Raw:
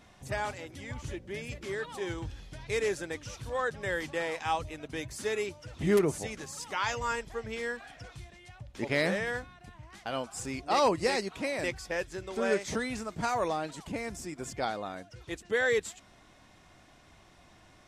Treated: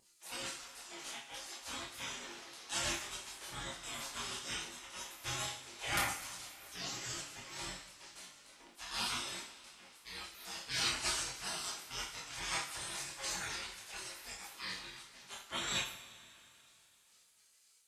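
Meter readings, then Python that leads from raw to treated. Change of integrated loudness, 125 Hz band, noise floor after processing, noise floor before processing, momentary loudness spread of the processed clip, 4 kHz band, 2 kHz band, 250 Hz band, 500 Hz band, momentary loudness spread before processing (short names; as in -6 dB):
-7.0 dB, -12.5 dB, -68 dBFS, -59 dBFS, 15 LU, +2.5 dB, -7.5 dB, -16.5 dB, -21.5 dB, 15 LU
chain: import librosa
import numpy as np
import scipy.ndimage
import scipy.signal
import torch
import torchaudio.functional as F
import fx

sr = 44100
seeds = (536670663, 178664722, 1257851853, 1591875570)

y = scipy.signal.sosfilt(scipy.signal.butter(4, 42.0, 'highpass', fs=sr, output='sos'), x)
y = fx.spec_gate(y, sr, threshold_db=-25, keep='weak')
y = fx.vibrato(y, sr, rate_hz=3.2, depth_cents=23.0)
y = fx.chorus_voices(y, sr, voices=4, hz=0.55, base_ms=25, depth_ms=4.7, mix_pct=45)
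y = fx.rev_double_slope(y, sr, seeds[0], early_s=0.5, late_s=3.2, knee_db=-18, drr_db=-1.0)
y = y * 10.0 ** (7.0 / 20.0)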